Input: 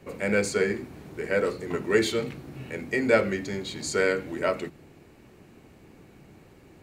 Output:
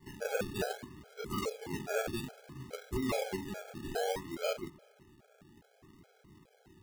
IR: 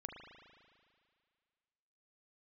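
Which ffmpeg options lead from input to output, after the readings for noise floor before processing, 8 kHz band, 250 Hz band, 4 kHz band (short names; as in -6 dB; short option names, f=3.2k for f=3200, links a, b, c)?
-54 dBFS, -9.0 dB, -10.0 dB, -8.0 dB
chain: -filter_complex "[0:a]acrusher=samples=34:mix=1:aa=0.000001:lfo=1:lforange=20.4:lforate=0.61,aeval=exprs='0.133*(abs(mod(val(0)/0.133+3,4)-2)-1)':c=same,asplit=2[a][b];[1:a]atrim=start_sample=2205[c];[b][c]afir=irnorm=-1:irlink=0,volume=-14.5dB[d];[a][d]amix=inputs=2:normalize=0,afftfilt=real='re*gt(sin(2*PI*2.4*pts/sr)*(1-2*mod(floor(b*sr/1024/430),2)),0)':imag='im*gt(sin(2*PI*2.4*pts/sr)*(1-2*mod(floor(b*sr/1024/430),2)),0)':win_size=1024:overlap=0.75,volume=-7dB"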